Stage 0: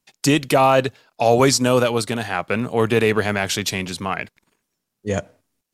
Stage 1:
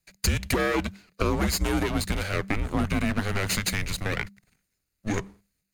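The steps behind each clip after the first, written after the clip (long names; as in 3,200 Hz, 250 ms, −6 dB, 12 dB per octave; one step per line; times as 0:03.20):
lower of the sound and its delayed copy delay 0.42 ms
downward compressor 6 to 1, threshold −21 dBFS, peak gain reduction 10 dB
frequency shifter −200 Hz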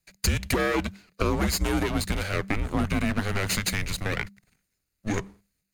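no processing that can be heard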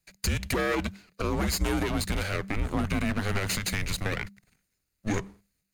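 brickwall limiter −18 dBFS, peak gain reduction 9.5 dB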